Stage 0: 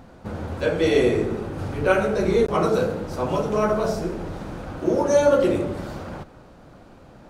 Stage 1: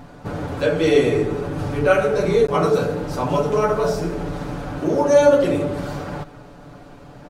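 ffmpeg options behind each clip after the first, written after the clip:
ffmpeg -i in.wav -filter_complex "[0:a]aecho=1:1:6.9:0.65,asplit=2[link_01][link_02];[link_02]acompressor=threshold=-26dB:ratio=6,volume=-2dB[link_03];[link_01][link_03]amix=inputs=2:normalize=0,volume=-1dB" out.wav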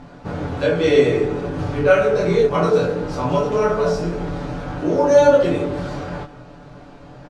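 ffmpeg -i in.wav -filter_complex "[0:a]lowpass=6500,asplit=2[link_01][link_02];[link_02]adelay=23,volume=-2.5dB[link_03];[link_01][link_03]amix=inputs=2:normalize=0,volume=-1dB" out.wav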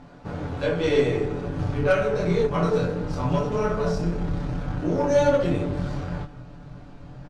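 ffmpeg -i in.wav -af "asubboost=boost=2.5:cutoff=240,aeval=exprs='0.794*(cos(1*acos(clip(val(0)/0.794,-1,1)))-cos(1*PI/2))+0.0282*(cos(8*acos(clip(val(0)/0.794,-1,1)))-cos(8*PI/2))':channel_layout=same,volume=-6dB" out.wav

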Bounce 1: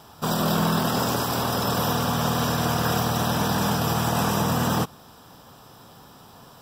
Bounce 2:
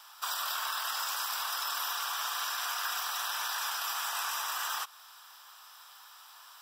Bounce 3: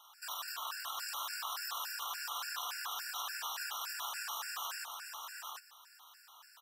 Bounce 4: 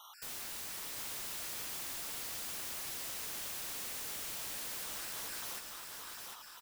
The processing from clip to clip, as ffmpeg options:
ffmpeg -i in.wav -af "highpass=frequency=1100:width=0.5412,highpass=frequency=1100:width=1.3066,acompressor=threshold=-33dB:ratio=2.5" out.wav
ffmpeg -i in.wav -af "aecho=1:1:748:0.596,afftfilt=real='re*gt(sin(2*PI*3.5*pts/sr)*(1-2*mod(floor(b*sr/1024/1400),2)),0)':imag='im*gt(sin(2*PI*3.5*pts/sr)*(1-2*mod(floor(b*sr/1024/1400),2)),0)':win_size=1024:overlap=0.75,volume=-4.5dB" out.wav
ffmpeg -i in.wav -af "aeval=exprs='(mod(150*val(0)+1,2)-1)/150':channel_layout=same,aecho=1:1:750|1500|2250|3000:0.596|0.185|0.0572|0.0177,volume=5dB" out.wav

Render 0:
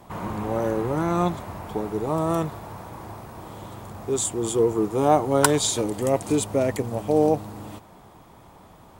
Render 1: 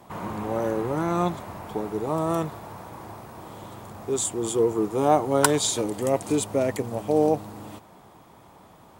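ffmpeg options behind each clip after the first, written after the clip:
ffmpeg -i in.wav -af "highpass=frequency=110:poles=1,volume=-1dB" out.wav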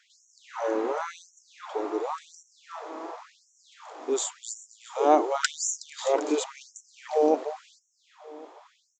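ffmpeg -i in.wav -filter_complex "[0:a]asplit=2[link_01][link_02];[link_02]adelay=369,lowpass=frequency=2500:poles=1,volume=-7dB,asplit=2[link_03][link_04];[link_04]adelay=369,lowpass=frequency=2500:poles=1,volume=0.42,asplit=2[link_05][link_06];[link_06]adelay=369,lowpass=frequency=2500:poles=1,volume=0.42,asplit=2[link_07][link_08];[link_08]adelay=369,lowpass=frequency=2500:poles=1,volume=0.42,asplit=2[link_09][link_10];[link_10]adelay=369,lowpass=frequency=2500:poles=1,volume=0.42[link_11];[link_01][link_03][link_05][link_07][link_09][link_11]amix=inputs=6:normalize=0,aresample=16000,aresample=44100,afftfilt=real='re*gte(b*sr/1024,230*pow(5600/230,0.5+0.5*sin(2*PI*0.92*pts/sr)))':imag='im*gte(b*sr/1024,230*pow(5600/230,0.5+0.5*sin(2*PI*0.92*pts/sr)))':win_size=1024:overlap=0.75" out.wav

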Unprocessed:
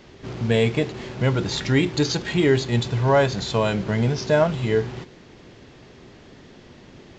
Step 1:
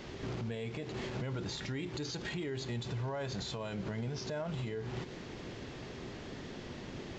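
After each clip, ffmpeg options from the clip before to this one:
ffmpeg -i in.wav -af "acompressor=threshold=-33dB:ratio=3,alimiter=level_in=8dB:limit=-24dB:level=0:latency=1:release=94,volume=-8dB,volume=1.5dB" out.wav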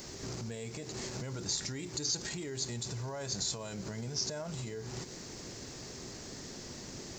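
ffmpeg -i in.wav -af "aexciter=amount=6.3:drive=7.1:freq=4700,volume=-2.5dB" out.wav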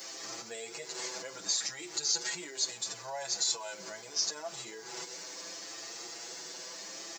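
ffmpeg -i in.wav -filter_complex "[0:a]highpass=600,aecho=1:1:6:0.65,asplit=2[link_01][link_02];[link_02]adelay=7.3,afreqshift=0.73[link_03];[link_01][link_03]amix=inputs=2:normalize=1,volume=6dB" out.wav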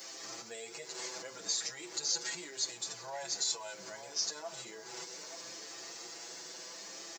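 ffmpeg -i in.wav -filter_complex "[0:a]asplit=2[link_01][link_02];[link_02]adelay=874.6,volume=-9dB,highshelf=frequency=4000:gain=-19.7[link_03];[link_01][link_03]amix=inputs=2:normalize=0,volume=-3dB" out.wav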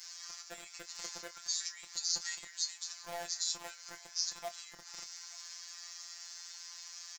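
ffmpeg -i in.wav -filter_complex "[0:a]acrossover=split=1100[link_01][link_02];[link_01]acrusher=bits=6:mix=0:aa=0.000001[link_03];[link_03][link_02]amix=inputs=2:normalize=0,afftfilt=real='hypot(re,im)*cos(PI*b)':imag='0':win_size=1024:overlap=0.75,asplit=2[link_04][link_05];[link_05]adelay=26,volume=-12dB[link_06];[link_04][link_06]amix=inputs=2:normalize=0,volume=1.5dB" out.wav

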